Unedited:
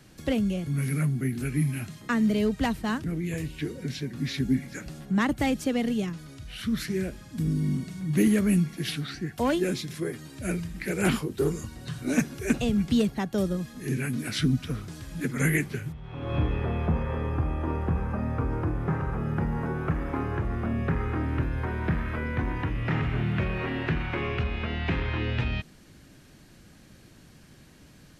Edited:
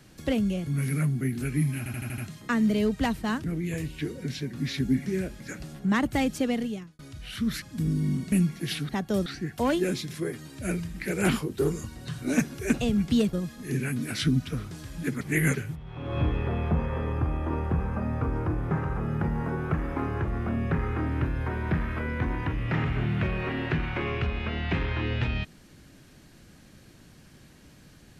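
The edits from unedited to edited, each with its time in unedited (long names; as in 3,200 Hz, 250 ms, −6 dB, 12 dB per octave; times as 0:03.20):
0:01.78: stutter 0.08 s, 6 plays
0:05.75–0:06.25: fade out linear
0:06.88–0:07.22: move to 0:04.66
0:07.92–0:08.49: remove
0:13.13–0:13.50: move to 0:09.06
0:15.38–0:15.72: reverse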